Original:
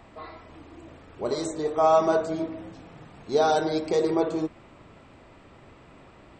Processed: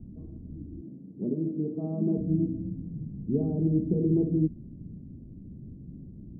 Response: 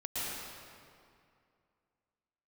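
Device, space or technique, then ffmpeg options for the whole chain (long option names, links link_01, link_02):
the neighbour's flat through the wall: -filter_complex "[0:a]lowpass=frequency=260:width=0.5412,lowpass=frequency=260:width=1.3066,equalizer=frequency=180:width_type=o:width=0.7:gain=6,asettb=1/sr,asplit=3[link_01][link_02][link_03];[link_01]atrim=end=0.814[link_04];[link_02]atrim=start=0.81:end=2.18,asetpts=PTS-STARTPTS,afade=type=in:duration=0.004:curve=qsin,afade=type=out:start_time=1.366:duration=0.004:curve=qsin,highpass=frequency=160:width=0.5412,highpass=frequency=160:width=1.3066[link_05];[link_03]atrim=start=2.176[link_06];[link_04][link_05]acrossfade=duration=0.004:curve1=hsin:curve2=qsin[link_07];[link_07][link_06]acrossfade=duration=0.004:curve1=qsin:curve2=hsin,volume=9dB"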